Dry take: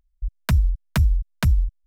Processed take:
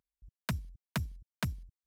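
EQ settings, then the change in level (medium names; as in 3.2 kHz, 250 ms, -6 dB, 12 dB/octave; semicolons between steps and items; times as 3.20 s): high-pass 140 Hz 12 dB/octave; -9.0 dB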